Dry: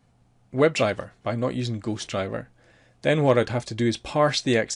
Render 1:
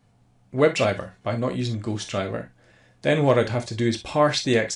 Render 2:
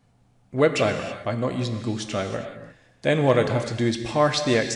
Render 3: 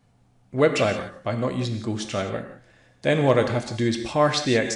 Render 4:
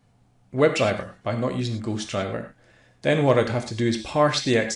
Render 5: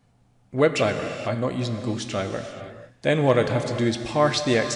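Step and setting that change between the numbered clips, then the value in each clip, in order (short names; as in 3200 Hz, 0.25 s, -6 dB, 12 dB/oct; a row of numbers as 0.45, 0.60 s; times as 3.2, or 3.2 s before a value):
non-linear reverb, gate: 80, 350, 200, 130, 510 ms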